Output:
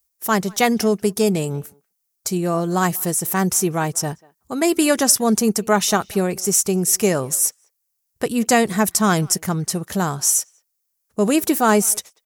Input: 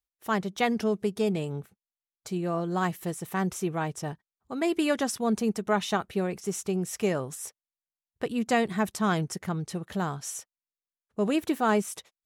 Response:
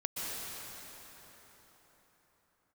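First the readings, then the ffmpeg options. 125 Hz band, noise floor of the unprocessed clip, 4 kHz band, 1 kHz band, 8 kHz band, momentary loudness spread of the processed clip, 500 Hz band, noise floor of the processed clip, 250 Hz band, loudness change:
+8.5 dB, under -85 dBFS, +12.0 dB, +8.5 dB, +19.5 dB, 8 LU, +8.5 dB, -74 dBFS, +8.5 dB, +10.5 dB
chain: -filter_complex "[0:a]asplit=2[a][b];[b]adelay=190,highpass=300,lowpass=3.4k,asoftclip=type=hard:threshold=-21.5dB,volume=-24dB[c];[a][c]amix=inputs=2:normalize=0,aexciter=amount=3.2:drive=6.5:freq=4.9k,volume=8.5dB"

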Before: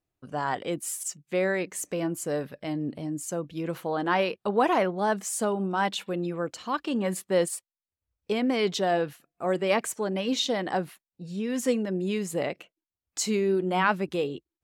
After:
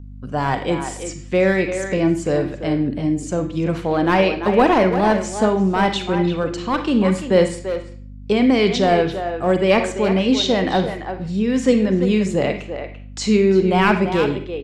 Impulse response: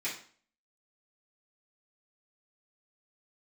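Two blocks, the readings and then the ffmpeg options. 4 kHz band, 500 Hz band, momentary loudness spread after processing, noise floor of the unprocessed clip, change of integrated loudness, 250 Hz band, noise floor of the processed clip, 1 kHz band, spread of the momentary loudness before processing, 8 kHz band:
+8.0 dB, +9.5 dB, 10 LU, under -85 dBFS, +9.5 dB, +12.0 dB, -36 dBFS, +8.0 dB, 9 LU, 0.0 dB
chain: -filter_complex "[0:a]acrossover=split=5500[a][b];[b]acompressor=threshold=-40dB:ratio=4:attack=1:release=60[c];[a][c]amix=inputs=2:normalize=0,lowpass=f=8.2k:w=0.5412,lowpass=f=8.2k:w=1.3066,lowshelf=f=210:g=7.5,bandreject=f=6.5k:w=30,aeval=exprs='val(0)+0.00794*(sin(2*PI*50*n/s)+sin(2*PI*2*50*n/s)/2+sin(2*PI*3*50*n/s)/3+sin(2*PI*4*50*n/s)/4+sin(2*PI*5*50*n/s)/5)':c=same,acrossover=split=800|2100[d][e][f];[e]aeval=exprs='clip(val(0),-1,0.0211)':c=same[g];[d][g][f]amix=inputs=3:normalize=0,asplit=2[h][i];[i]adelay=340,highpass=300,lowpass=3.4k,asoftclip=type=hard:threshold=-17.5dB,volume=-8dB[j];[h][j]amix=inputs=2:normalize=0,asplit=2[k][l];[1:a]atrim=start_sample=2205,adelay=39[m];[l][m]afir=irnorm=-1:irlink=0,volume=-11.5dB[n];[k][n]amix=inputs=2:normalize=0,volume=7.5dB"

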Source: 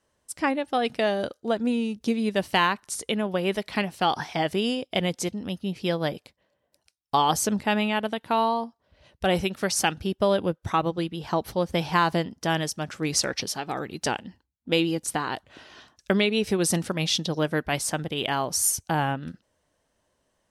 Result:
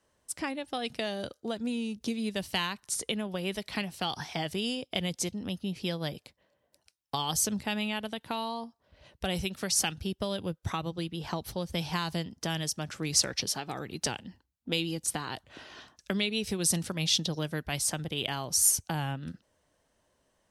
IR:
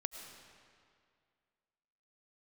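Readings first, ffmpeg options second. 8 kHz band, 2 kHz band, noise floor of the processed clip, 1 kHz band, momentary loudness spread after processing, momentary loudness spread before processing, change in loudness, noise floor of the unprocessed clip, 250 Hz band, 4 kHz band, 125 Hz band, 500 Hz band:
0.0 dB, -7.5 dB, -75 dBFS, -11.5 dB, 10 LU, 7 LU, -5.5 dB, -75 dBFS, -7.0 dB, -2.5 dB, -4.5 dB, -10.0 dB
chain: -filter_complex "[0:a]acrossover=split=150|3000[a][b][c];[b]acompressor=threshold=-36dB:ratio=3[d];[a][d][c]amix=inputs=3:normalize=0"

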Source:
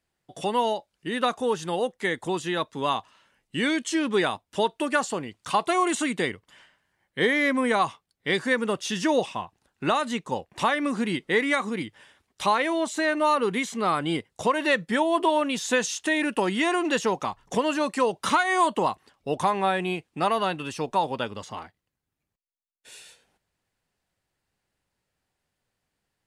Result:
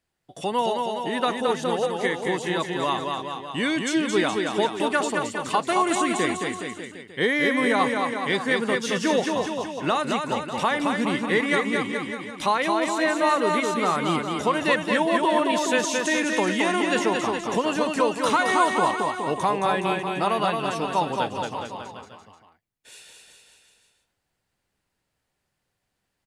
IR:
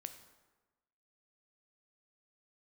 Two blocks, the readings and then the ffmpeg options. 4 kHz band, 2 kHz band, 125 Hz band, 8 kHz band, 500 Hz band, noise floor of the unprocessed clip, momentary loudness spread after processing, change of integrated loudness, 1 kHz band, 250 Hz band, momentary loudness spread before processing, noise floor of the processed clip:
+2.0 dB, +2.0 dB, +2.5 dB, +2.0 dB, +2.0 dB, -82 dBFS, 7 LU, +2.0 dB, +2.0 dB, +2.0 dB, 9 LU, -78 dBFS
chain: -af "aecho=1:1:220|418|596.2|756.6|900.9:0.631|0.398|0.251|0.158|0.1"

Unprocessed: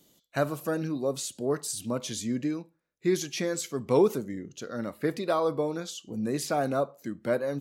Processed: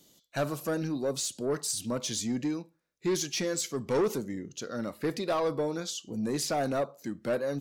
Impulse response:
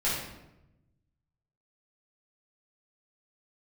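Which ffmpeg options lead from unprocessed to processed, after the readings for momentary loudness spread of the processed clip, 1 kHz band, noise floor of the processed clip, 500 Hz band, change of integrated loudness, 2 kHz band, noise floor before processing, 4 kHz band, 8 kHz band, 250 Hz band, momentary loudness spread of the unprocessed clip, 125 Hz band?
7 LU, -2.5 dB, -72 dBFS, -2.5 dB, -1.5 dB, -1.5 dB, -72 dBFS, +2.5 dB, +2.5 dB, -2.0 dB, 10 LU, -2.0 dB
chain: -af "equalizer=f=5.3k:t=o:w=1.2:g=5,asoftclip=type=tanh:threshold=-22dB"

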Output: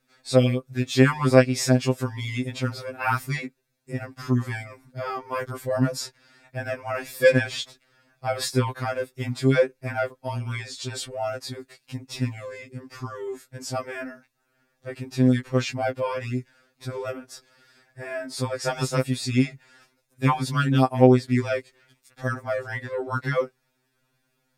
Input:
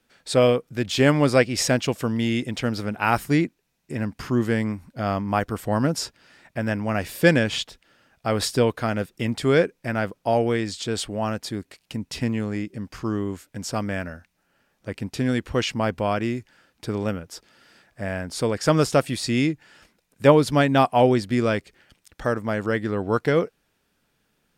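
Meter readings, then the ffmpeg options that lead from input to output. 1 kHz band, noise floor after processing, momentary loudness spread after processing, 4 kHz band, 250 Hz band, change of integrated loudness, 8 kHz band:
-3.0 dB, -72 dBFS, 17 LU, -3.5 dB, -2.5 dB, -1.5 dB, -2.5 dB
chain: -af "bandreject=f=3k:w=9.1,afftfilt=real='re*2.45*eq(mod(b,6),0)':imag='im*2.45*eq(mod(b,6),0)':win_size=2048:overlap=0.75"

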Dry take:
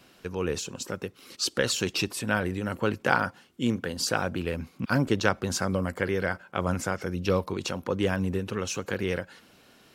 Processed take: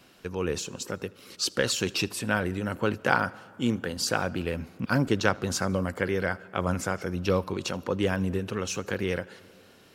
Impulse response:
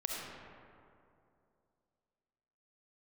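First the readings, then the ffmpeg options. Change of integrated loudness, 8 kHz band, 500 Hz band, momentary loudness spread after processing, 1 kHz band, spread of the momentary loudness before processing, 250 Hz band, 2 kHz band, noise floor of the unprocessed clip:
0.0 dB, 0.0 dB, 0.0 dB, 8 LU, 0.0 dB, 8 LU, 0.0 dB, 0.0 dB, -58 dBFS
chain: -filter_complex "[0:a]asplit=2[a][b];[1:a]atrim=start_sample=2205,adelay=79[c];[b][c]afir=irnorm=-1:irlink=0,volume=-24.5dB[d];[a][d]amix=inputs=2:normalize=0"

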